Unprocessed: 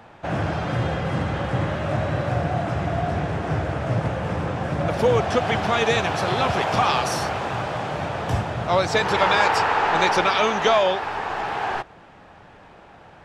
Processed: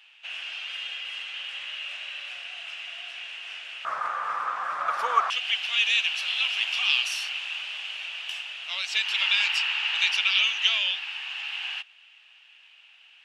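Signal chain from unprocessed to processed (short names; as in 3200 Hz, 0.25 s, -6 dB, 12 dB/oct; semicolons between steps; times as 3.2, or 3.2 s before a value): resonant high-pass 2800 Hz, resonance Q 8.2, from 3.85 s 1200 Hz, from 5.3 s 2800 Hz; gain -6 dB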